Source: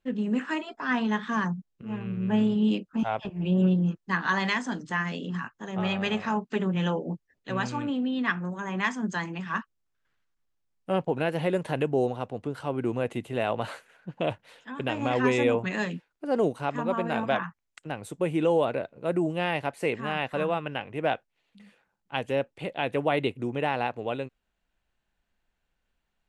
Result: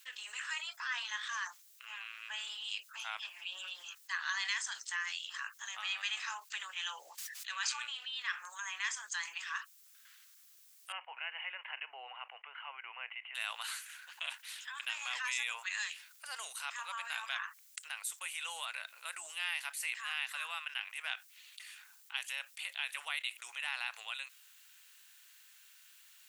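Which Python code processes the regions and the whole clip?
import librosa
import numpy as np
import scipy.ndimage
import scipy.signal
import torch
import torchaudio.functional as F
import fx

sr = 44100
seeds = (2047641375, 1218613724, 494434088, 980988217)

y = fx.chain(x, sr, fx.weighting(curve='A'),
    fx.sustainer(db_per_s=56.0), at=(7.12, 8.15))
y = fx.chain(y, sr, fx.cheby_ripple(hz=3000.0, ripple_db=6),
    fx.low_shelf(hz=260.0, db=8.0), at=(10.92, 13.35))
y = scipy.signal.sosfilt(scipy.signal.butter(4, 1100.0, 'highpass', fs=sr, output='sos'), y)
y = np.diff(y, prepend=0.0)
y = fx.env_flatten(y, sr, amount_pct=50)
y = y * librosa.db_to_amplitude(2.0)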